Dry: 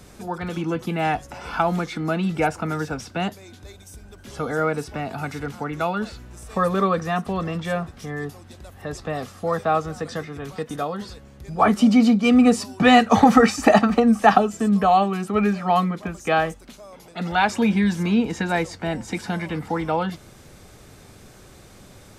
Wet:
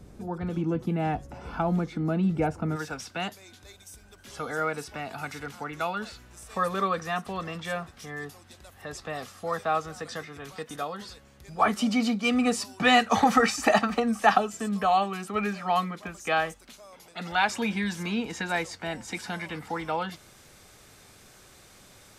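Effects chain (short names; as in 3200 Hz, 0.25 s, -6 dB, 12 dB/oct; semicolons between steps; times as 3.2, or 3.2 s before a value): tilt shelf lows +6.5 dB, about 690 Hz, from 2.75 s lows -5 dB; gain -6.5 dB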